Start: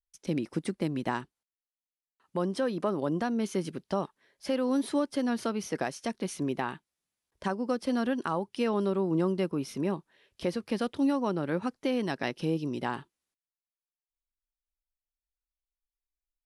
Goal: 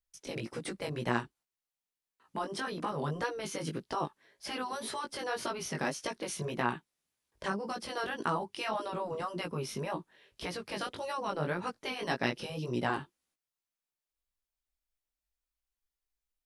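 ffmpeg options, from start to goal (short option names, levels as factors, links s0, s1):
-af "afftfilt=real='re*lt(hypot(re,im),0.178)':imag='im*lt(hypot(re,im),0.178)':win_size=1024:overlap=0.75,flanger=delay=16.5:depth=3.9:speed=1.8,volume=1.78"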